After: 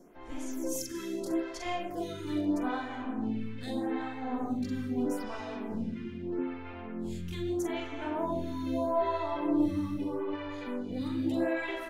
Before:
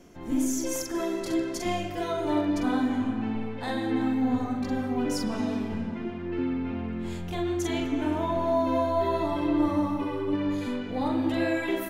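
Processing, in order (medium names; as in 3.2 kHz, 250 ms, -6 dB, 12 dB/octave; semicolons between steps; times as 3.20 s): lamp-driven phase shifter 0.79 Hz; trim -2 dB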